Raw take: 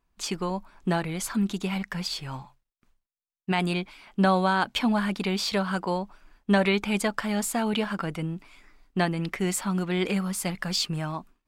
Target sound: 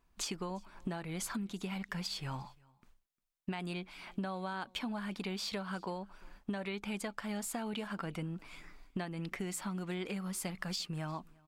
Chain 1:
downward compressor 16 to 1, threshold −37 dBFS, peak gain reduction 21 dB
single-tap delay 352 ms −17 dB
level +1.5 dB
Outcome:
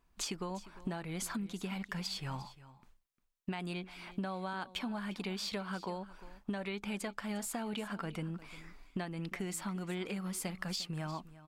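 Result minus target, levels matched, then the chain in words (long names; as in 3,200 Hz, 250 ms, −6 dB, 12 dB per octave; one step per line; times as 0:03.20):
echo-to-direct +9.5 dB
downward compressor 16 to 1, threshold −37 dBFS, peak gain reduction 21 dB
single-tap delay 352 ms −26.5 dB
level +1.5 dB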